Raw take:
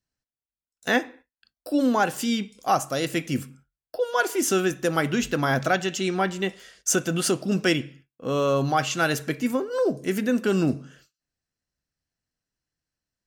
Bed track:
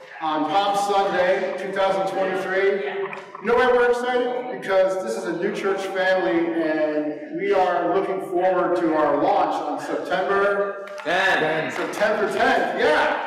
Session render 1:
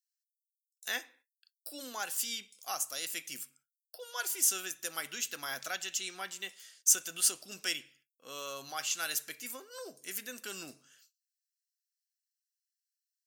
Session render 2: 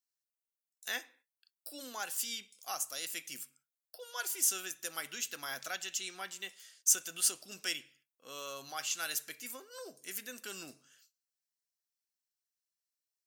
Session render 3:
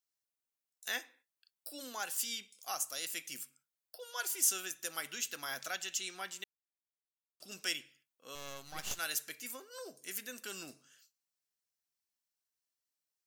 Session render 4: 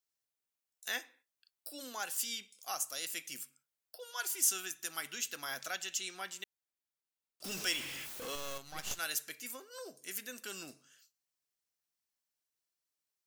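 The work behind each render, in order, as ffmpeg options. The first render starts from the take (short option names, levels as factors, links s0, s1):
-af "aderivative"
-af "volume=0.794"
-filter_complex "[0:a]asettb=1/sr,asplit=3[s0][s1][s2];[s0]atrim=end=8.354[s3];[s1]atrim=start=8.35:end=8.99,asetpts=PTS-STARTPTS,afade=t=in:d=0.004:c=qsin,afade=t=out:st=0.636:d=0.004:c=qsin,aeval=exprs='max(val(0),0)':c=same[s4];[s2]atrim=start=8.986[s5];[s3][s4]acrossfade=d=0.004:c1=hsin:c2=qsin[s6];[s6][s5]acrossfade=d=0.004:c1=qsin:c2=hsin,asplit=3[s7][s8][s9];[s7]atrim=end=6.44,asetpts=PTS-STARTPTS,afade=t=out:st=6.436:d=0.004:c=hsin[s10];[s8]atrim=start=6.44:end=7.4,asetpts=PTS-STARTPTS,volume=0[s11];[s9]atrim=start=7.4,asetpts=PTS-STARTPTS,afade=t=in:d=0.004:c=hsin[s12];[s10][s11][s12]concat=n=3:v=0:a=1"
-filter_complex "[0:a]asettb=1/sr,asplit=3[s0][s1][s2];[s0]atrim=end=4.114[s3];[s1]atrim=start=4.11:end=5.13,asetpts=PTS-STARTPTS,afade=t=in:d=0.004:c=qsin,afade=t=out:st=1.016:d=0.004:c=qsin,equalizer=f=530:w=6.2:g=-12[s4];[s2]atrim=start=5.126[s5];[s3][s4]acrossfade=d=0.004:c1=hsin:c2=qsin[s6];[s6][s5]acrossfade=d=0.004:c1=qsin:c2=hsin,asettb=1/sr,asplit=3[s7][s8][s9];[s7]atrim=end=7.444[s10];[s8]atrim=start=7.44:end=8.58,asetpts=PTS-STARTPTS,afade=t=in:d=0.004:c=qsin,afade=t=out:st=1.136:d=0.004:c=qsin,aeval=exprs='val(0)+0.5*0.0133*sgn(val(0))':c=same[s11];[s9]atrim=start=8.576[s12];[s10][s11]acrossfade=d=0.004:c1=hsin:c2=qsin[s13];[s13][s12]acrossfade=d=0.004:c1=qsin:c2=hsin"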